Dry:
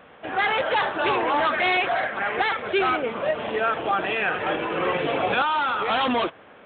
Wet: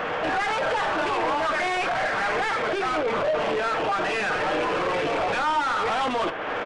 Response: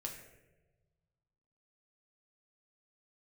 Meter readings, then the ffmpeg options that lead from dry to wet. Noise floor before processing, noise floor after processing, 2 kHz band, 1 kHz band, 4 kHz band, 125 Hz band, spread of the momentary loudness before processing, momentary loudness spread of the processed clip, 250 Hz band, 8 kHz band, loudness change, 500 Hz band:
-49 dBFS, -28 dBFS, -1.5 dB, -0.5 dB, -2.5 dB, 0.0 dB, 5 LU, 1 LU, -1.5 dB, n/a, -1.0 dB, 0.0 dB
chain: -filter_complex "[0:a]acompressor=threshold=-38dB:ratio=2.5,asoftclip=type=tanh:threshold=-39.5dB,asplit=2[a][b];[b]highpass=f=720:p=1,volume=22dB,asoftclip=type=tanh:threshold=-31dB[c];[a][c]amix=inputs=2:normalize=0,lowpass=f=1.7k:p=1,volume=-6dB,asplit=2[d][e];[1:a]atrim=start_sample=2205,atrim=end_sample=3087[f];[e][f]afir=irnorm=-1:irlink=0,volume=2dB[g];[d][g]amix=inputs=2:normalize=0,aresample=22050,aresample=44100,volume=8dB"

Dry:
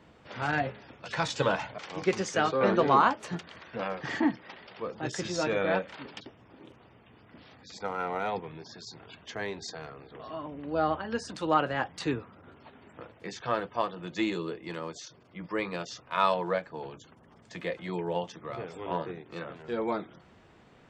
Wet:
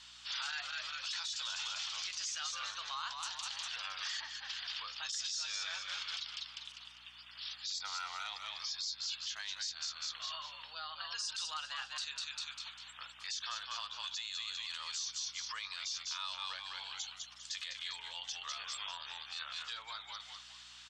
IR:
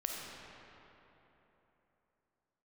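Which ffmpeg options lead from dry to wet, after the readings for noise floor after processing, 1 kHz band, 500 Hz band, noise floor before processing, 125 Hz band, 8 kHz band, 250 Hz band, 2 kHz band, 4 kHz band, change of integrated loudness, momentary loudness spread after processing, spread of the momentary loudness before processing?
-55 dBFS, -15.5 dB, -33.5 dB, -58 dBFS, under -30 dB, +5.0 dB, under -40 dB, -7.5 dB, +6.0 dB, -8.5 dB, 7 LU, 18 LU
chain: -filter_complex "[0:a]lowpass=5.8k,aexciter=amount=9.4:drive=3.8:freq=3.1k,asplit=5[a][b][c][d][e];[b]adelay=199,afreqshift=-90,volume=-7.5dB[f];[c]adelay=398,afreqshift=-180,volume=-15.7dB[g];[d]adelay=597,afreqshift=-270,volume=-23.9dB[h];[e]adelay=796,afreqshift=-360,volume=-32dB[i];[a][f][g][h][i]amix=inputs=5:normalize=0,acompressor=threshold=-34dB:ratio=12,highpass=f=1.2k:w=0.5412,highpass=f=1.2k:w=1.3066,aeval=exprs='val(0)+0.0002*(sin(2*PI*60*n/s)+sin(2*PI*2*60*n/s)/2+sin(2*PI*3*60*n/s)/3+sin(2*PI*4*60*n/s)/4+sin(2*PI*5*60*n/s)/5)':c=same,alimiter=level_in=8.5dB:limit=-24dB:level=0:latency=1:release=17,volume=-8.5dB,volume=2.5dB"

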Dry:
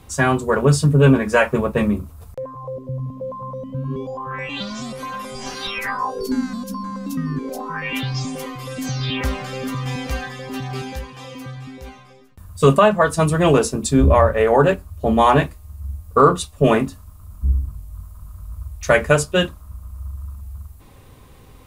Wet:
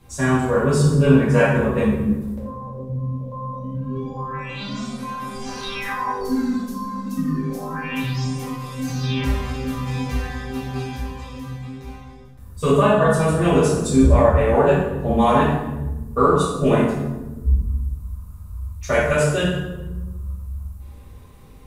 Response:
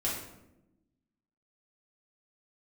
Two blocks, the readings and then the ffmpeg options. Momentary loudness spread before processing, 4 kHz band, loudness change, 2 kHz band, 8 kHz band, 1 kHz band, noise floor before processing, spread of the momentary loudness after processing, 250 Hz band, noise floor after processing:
20 LU, -4.0 dB, -1.0 dB, -3.0 dB, -3.0 dB, -2.5 dB, -45 dBFS, 17 LU, +1.0 dB, -41 dBFS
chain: -filter_complex "[1:a]atrim=start_sample=2205,asetrate=31752,aresample=44100[a];[0:a][a]afir=irnorm=-1:irlink=0,volume=-10.5dB"

